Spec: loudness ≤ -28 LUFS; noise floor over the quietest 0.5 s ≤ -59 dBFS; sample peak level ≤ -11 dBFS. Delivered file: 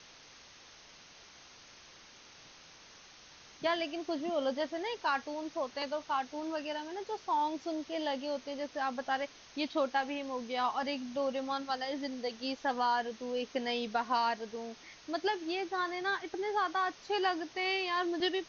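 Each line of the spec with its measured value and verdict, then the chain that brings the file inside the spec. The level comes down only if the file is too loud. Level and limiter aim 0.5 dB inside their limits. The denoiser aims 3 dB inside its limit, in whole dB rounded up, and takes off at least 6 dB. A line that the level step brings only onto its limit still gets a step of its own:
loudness -34.5 LUFS: pass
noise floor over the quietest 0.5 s -56 dBFS: fail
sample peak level -19.0 dBFS: pass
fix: noise reduction 6 dB, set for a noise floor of -56 dBFS

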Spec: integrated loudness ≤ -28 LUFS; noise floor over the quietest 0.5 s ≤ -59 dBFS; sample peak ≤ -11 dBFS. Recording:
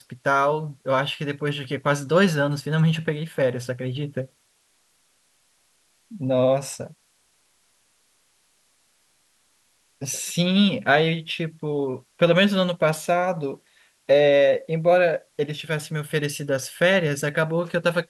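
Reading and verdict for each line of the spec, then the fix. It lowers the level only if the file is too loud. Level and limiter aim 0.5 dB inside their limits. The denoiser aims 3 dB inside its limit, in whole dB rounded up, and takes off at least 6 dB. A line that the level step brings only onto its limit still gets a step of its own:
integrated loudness -22.5 LUFS: fail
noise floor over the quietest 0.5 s -65 dBFS: pass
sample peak -6.0 dBFS: fail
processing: trim -6 dB

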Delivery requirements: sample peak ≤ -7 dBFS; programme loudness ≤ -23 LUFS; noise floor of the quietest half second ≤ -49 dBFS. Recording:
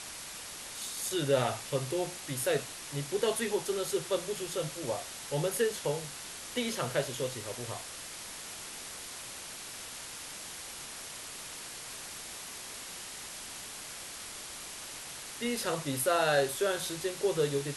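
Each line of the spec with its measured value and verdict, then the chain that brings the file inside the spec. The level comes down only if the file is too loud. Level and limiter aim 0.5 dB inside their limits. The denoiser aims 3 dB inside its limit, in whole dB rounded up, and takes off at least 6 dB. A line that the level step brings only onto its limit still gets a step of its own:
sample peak -15.0 dBFS: pass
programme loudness -34.5 LUFS: pass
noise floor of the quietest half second -44 dBFS: fail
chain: noise reduction 8 dB, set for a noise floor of -44 dBFS

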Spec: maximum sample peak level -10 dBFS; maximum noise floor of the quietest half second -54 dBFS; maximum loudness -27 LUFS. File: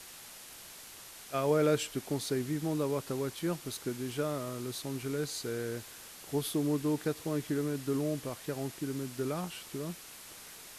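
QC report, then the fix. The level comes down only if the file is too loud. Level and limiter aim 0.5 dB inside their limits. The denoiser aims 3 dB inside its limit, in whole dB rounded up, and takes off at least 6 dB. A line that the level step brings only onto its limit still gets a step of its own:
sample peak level -16.0 dBFS: pass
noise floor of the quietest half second -50 dBFS: fail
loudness -34.5 LUFS: pass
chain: noise reduction 7 dB, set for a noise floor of -50 dBFS

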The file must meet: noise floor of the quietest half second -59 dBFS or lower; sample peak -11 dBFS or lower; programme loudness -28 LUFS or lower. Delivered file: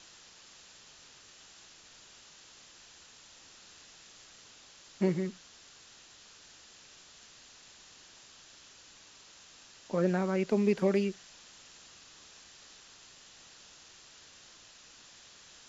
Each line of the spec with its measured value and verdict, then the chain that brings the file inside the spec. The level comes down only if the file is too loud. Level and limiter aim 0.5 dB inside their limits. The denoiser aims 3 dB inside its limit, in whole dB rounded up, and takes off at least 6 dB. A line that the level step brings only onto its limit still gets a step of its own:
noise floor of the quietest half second -56 dBFS: fail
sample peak -15.5 dBFS: pass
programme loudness -30.5 LUFS: pass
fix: noise reduction 6 dB, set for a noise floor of -56 dBFS

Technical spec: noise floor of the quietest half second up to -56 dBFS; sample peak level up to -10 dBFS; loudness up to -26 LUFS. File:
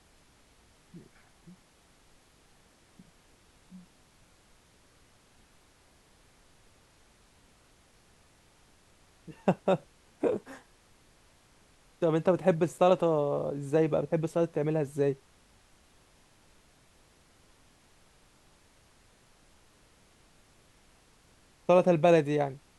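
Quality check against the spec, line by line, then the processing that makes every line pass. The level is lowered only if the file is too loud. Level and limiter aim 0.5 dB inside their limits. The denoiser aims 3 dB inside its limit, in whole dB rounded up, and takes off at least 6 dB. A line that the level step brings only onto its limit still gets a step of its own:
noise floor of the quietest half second -62 dBFS: pass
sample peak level -9.5 dBFS: fail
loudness -28.0 LUFS: pass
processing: peak limiter -10.5 dBFS

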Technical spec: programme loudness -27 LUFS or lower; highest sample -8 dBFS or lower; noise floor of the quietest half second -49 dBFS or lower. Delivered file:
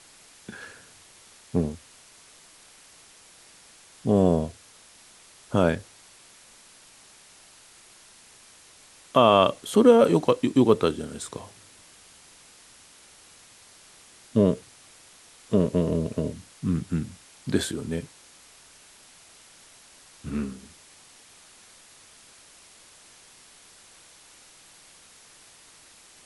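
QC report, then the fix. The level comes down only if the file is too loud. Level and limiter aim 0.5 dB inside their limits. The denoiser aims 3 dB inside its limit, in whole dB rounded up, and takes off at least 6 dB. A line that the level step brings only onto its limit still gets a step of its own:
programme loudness -24.0 LUFS: fail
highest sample -4.5 dBFS: fail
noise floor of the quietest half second -53 dBFS: pass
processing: trim -3.5 dB; peak limiter -8.5 dBFS

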